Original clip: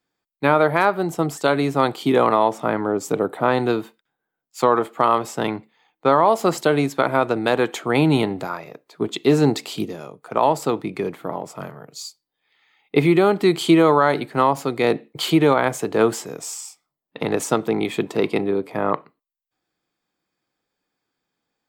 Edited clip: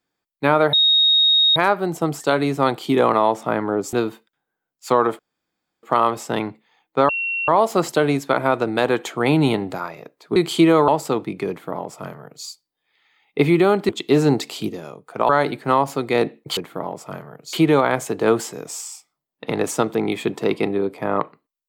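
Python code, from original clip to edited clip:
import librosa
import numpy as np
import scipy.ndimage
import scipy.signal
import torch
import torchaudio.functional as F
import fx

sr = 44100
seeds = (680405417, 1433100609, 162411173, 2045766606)

y = fx.edit(x, sr, fx.insert_tone(at_s=0.73, length_s=0.83, hz=3750.0, db=-12.0),
    fx.cut(start_s=3.1, length_s=0.55),
    fx.insert_room_tone(at_s=4.91, length_s=0.64),
    fx.insert_tone(at_s=6.17, length_s=0.39, hz=2730.0, db=-21.0),
    fx.swap(start_s=9.05, length_s=1.4, other_s=13.46, other_length_s=0.52),
    fx.duplicate(start_s=11.06, length_s=0.96, to_s=15.26), tone=tone)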